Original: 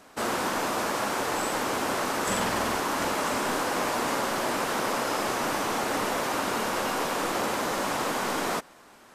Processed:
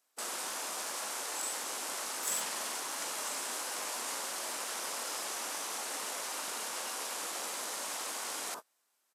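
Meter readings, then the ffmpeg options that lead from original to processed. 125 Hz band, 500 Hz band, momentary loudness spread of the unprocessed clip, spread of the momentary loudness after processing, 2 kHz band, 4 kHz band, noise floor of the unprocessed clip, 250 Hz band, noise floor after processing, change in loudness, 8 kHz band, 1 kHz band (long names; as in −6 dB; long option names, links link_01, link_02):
below −25 dB, −16.5 dB, 1 LU, 2 LU, −11.5 dB, −5.5 dB, −53 dBFS, −21.5 dB, −77 dBFS, −8.5 dB, −0.5 dB, −13.5 dB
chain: -filter_complex "[0:a]aderivative,asplit=2[link_01][link_02];[link_02]adelay=25,volume=-12.5dB[link_03];[link_01][link_03]amix=inputs=2:normalize=0,acrossover=split=880[link_04][link_05];[link_04]acontrast=69[link_06];[link_06][link_05]amix=inputs=2:normalize=0,afwtdn=0.00501"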